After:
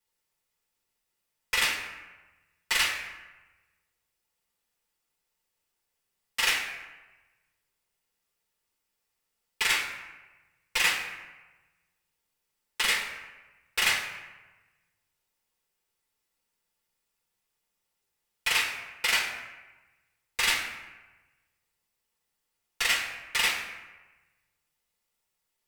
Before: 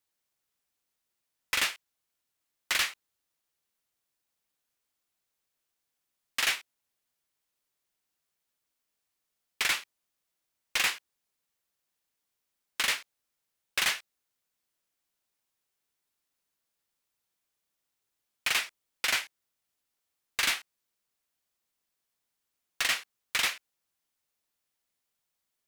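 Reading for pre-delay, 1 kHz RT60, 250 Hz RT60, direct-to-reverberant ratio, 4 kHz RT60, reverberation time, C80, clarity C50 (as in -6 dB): 4 ms, 1.2 s, 1.2 s, -5.0 dB, 0.75 s, 1.2 s, 7.5 dB, 5.0 dB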